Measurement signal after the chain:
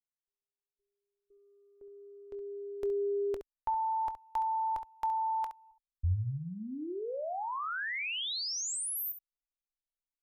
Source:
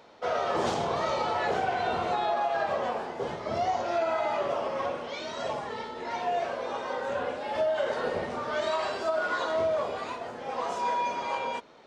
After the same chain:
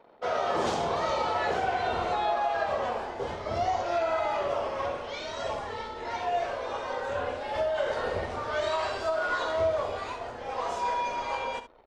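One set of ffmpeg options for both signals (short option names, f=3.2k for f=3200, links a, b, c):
-af "anlmdn=0.00158,asubboost=boost=10:cutoff=58,aecho=1:1:23|68:0.158|0.282"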